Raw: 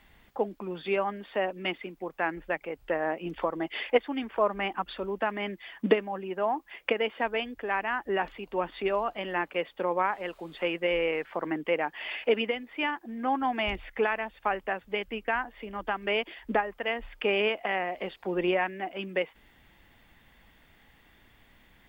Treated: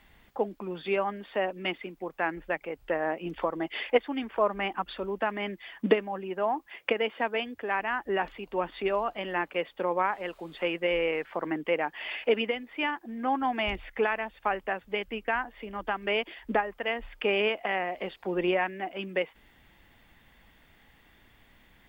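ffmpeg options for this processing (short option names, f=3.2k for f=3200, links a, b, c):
-filter_complex "[0:a]asettb=1/sr,asplit=3[a][b][c];[a]atrim=end=6.664[d];[b]atrim=start=6.66:end=7.8,asetpts=PTS-STARTPTS,afade=t=in:d=0.004:c=qsin,afade=t=out:st=1.136:d=0.004:c=qsin,highpass=f=68:w=0.5412,highpass=f=68:w=1.3066[e];[c]atrim=start=7.796[f];[d][e]acrossfade=d=0.004:c1=hsin:c2=qsin[g];[g][f]acrossfade=d=0.004:c1=qsin:c2=hsin"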